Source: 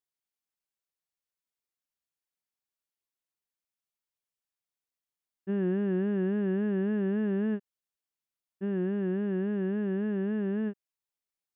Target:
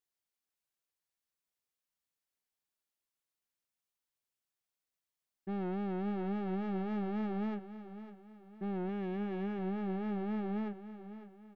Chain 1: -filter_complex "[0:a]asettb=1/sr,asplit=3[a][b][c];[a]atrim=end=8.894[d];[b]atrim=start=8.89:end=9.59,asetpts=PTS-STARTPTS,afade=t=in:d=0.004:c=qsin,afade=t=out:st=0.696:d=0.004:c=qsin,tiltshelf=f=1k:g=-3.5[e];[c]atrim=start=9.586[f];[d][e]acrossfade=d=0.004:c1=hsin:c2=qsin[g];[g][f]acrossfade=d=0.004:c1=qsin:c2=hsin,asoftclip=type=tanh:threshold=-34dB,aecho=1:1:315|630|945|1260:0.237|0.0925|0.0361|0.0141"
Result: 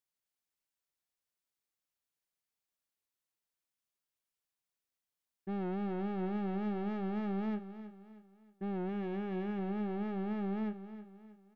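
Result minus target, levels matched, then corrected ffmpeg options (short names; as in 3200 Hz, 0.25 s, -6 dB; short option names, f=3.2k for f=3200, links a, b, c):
echo 0.24 s early
-filter_complex "[0:a]asettb=1/sr,asplit=3[a][b][c];[a]atrim=end=8.894[d];[b]atrim=start=8.89:end=9.59,asetpts=PTS-STARTPTS,afade=t=in:d=0.004:c=qsin,afade=t=out:st=0.696:d=0.004:c=qsin,tiltshelf=f=1k:g=-3.5[e];[c]atrim=start=9.586[f];[d][e]acrossfade=d=0.004:c1=hsin:c2=qsin[g];[g][f]acrossfade=d=0.004:c1=qsin:c2=hsin,asoftclip=type=tanh:threshold=-34dB,aecho=1:1:555|1110|1665|2220:0.237|0.0925|0.0361|0.0141"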